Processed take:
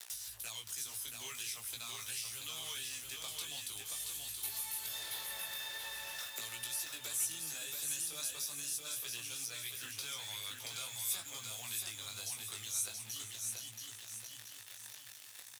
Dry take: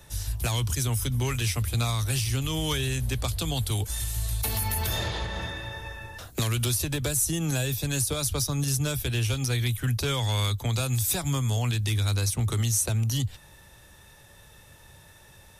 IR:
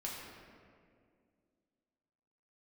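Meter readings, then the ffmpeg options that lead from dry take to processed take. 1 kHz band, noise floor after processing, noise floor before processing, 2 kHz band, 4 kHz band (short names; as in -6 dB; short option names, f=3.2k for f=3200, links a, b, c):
-16.0 dB, -53 dBFS, -52 dBFS, -11.0 dB, -9.0 dB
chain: -filter_complex "[0:a]acrusher=bits=6:mix=0:aa=0.5,lowpass=f=3.4k:p=1,asplit=2[a][b];[b]aecho=0:1:469:0.133[c];[a][c]amix=inputs=2:normalize=0,acompressor=threshold=-38dB:ratio=3,aderivative,flanger=delay=17:depth=3.2:speed=0.44,acompressor=mode=upward:threshold=-47dB:ratio=2.5,asplit=2[d][e];[e]aecho=0:1:678|1356|2034|2712|3390:0.631|0.271|0.117|0.0502|0.0216[f];[d][f]amix=inputs=2:normalize=0,volume=8.5dB"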